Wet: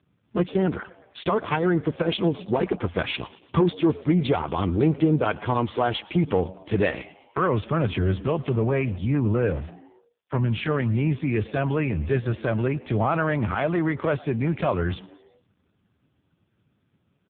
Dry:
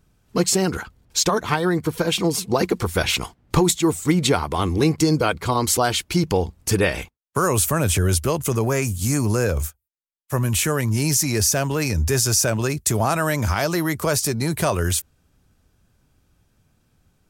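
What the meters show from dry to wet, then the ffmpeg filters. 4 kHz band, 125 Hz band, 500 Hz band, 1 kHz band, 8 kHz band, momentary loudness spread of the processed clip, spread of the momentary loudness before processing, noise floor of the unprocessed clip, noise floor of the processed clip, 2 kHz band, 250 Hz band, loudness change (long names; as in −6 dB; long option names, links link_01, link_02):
−11.0 dB, −2.5 dB, −2.0 dB, −3.5 dB, below −40 dB, 6 LU, 5 LU, −65 dBFS, −70 dBFS, −5.0 dB, −1.5 dB, −4.0 dB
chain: -filter_complex "[0:a]asoftclip=type=tanh:threshold=-11dB,asplit=5[link_01][link_02][link_03][link_04][link_05];[link_02]adelay=115,afreqshift=100,volume=-21dB[link_06];[link_03]adelay=230,afreqshift=200,volume=-26.5dB[link_07];[link_04]adelay=345,afreqshift=300,volume=-32dB[link_08];[link_05]adelay=460,afreqshift=400,volume=-37.5dB[link_09];[link_01][link_06][link_07][link_08][link_09]amix=inputs=5:normalize=0" -ar 8000 -c:a libopencore_amrnb -b:a 5150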